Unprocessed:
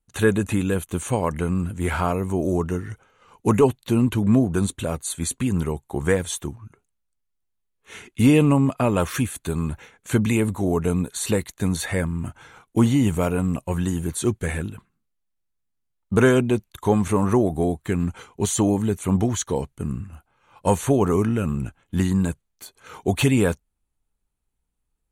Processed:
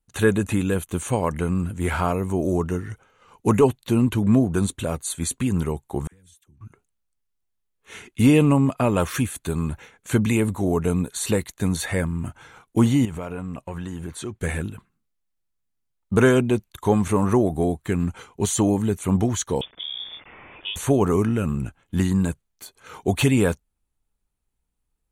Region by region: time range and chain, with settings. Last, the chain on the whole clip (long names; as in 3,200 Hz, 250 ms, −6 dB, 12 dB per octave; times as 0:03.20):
0:06.07–0:06.61: guitar amp tone stack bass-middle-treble 6-0-2 + downward compressor, threshold −51 dBFS + all-pass dispersion lows, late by 54 ms, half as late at 750 Hz
0:13.05–0:14.41: low-pass filter 1,900 Hz 6 dB per octave + tilt shelving filter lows −4 dB, about 680 Hz + downward compressor 4 to 1, threshold −28 dBFS
0:19.61–0:20.76: spike at every zero crossing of −23.5 dBFS + downward compressor 4 to 1, threshold −29 dBFS + voice inversion scrambler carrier 3,500 Hz
whole clip: no processing